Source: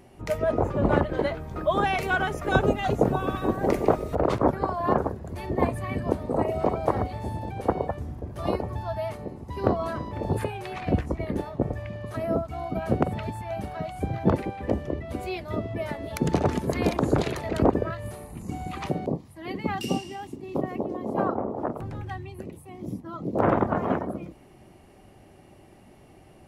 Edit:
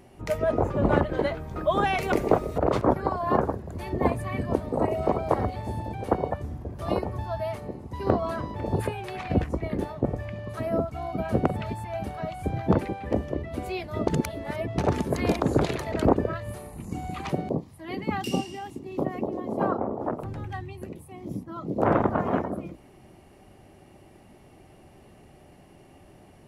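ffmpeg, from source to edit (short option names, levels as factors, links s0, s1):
-filter_complex "[0:a]asplit=4[s0][s1][s2][s3];[s0]atrim=end=2.122[s4];[s1]atrim=start=3.688:end=15.642[s5];[s2]atrim=start=15.638:end=16.352,asetpts=PTS-STARTPTS,areverse[s6];[s3]atrim=start=16.348[s7];[s4][s5]acrossfade=d=0.004:c1=hsin:c2=hsin[s8];[s8][s6]acrossfade=d=0.004:c1=hsin:c2=hsin[s9];[s9][s7]acrossfade=d=0.004:c1=hsin:c2=hsin"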